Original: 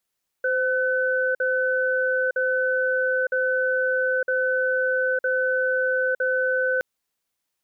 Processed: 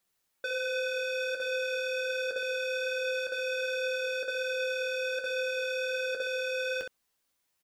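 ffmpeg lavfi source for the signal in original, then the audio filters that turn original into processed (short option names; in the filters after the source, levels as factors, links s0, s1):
-f lavfi -i "aevalsrc='0.075*(sin(2*PI*516*t)+sin(2*PI*1510*t))*clip(min(mod(t,0.96),0.91-mod(t,0.96))/0.005,0,1)':d=6.37:s=44100"
-filter_complex "[0:a]asoftclip=type=tanh:threshold=0.0316,aphaser=in_gain=1:out_gain=1:delay=3.6:decay=0.22:speed=1.3:type=sinusoidal,asplit=2[s0][s1];[s1]aecho=0:1:11|22|66:0.376|0.316|0.473[s2];[s0][s2]amix=inputs=2:normalize=0"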